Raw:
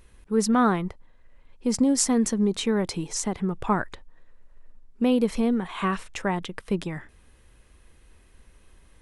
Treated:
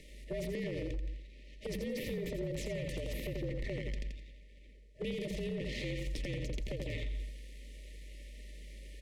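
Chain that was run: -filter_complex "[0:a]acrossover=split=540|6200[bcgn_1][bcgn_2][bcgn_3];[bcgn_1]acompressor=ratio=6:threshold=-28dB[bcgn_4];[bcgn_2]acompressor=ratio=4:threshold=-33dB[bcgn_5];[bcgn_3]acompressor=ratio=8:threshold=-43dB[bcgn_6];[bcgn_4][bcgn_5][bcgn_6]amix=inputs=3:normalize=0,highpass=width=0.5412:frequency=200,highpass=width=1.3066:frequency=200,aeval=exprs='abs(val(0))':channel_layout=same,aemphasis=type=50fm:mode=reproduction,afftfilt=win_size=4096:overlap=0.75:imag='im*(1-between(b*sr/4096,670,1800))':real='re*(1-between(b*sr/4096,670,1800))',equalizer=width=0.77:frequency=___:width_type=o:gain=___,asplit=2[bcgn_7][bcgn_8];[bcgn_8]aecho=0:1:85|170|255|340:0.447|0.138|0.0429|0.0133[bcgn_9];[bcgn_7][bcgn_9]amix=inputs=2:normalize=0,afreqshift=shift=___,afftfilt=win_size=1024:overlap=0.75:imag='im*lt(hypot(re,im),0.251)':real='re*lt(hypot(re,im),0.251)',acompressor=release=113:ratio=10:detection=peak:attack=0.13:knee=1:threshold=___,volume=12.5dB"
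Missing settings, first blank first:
270, 3.5, -49, -45dB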